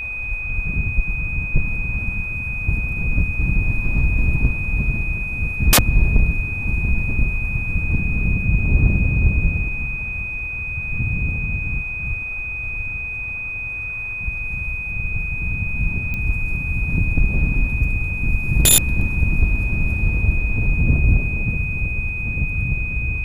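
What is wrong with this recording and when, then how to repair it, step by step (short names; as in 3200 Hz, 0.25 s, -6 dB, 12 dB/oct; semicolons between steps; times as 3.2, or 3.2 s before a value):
tone 2500 Hz -25 dBFS
16.14 pop -14 dBFS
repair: de-click; notch 2500 Hz, Q 30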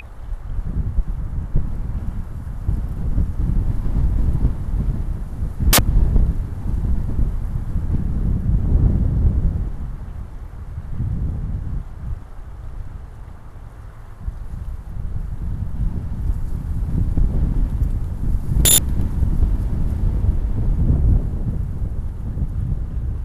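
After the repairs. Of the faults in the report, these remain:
none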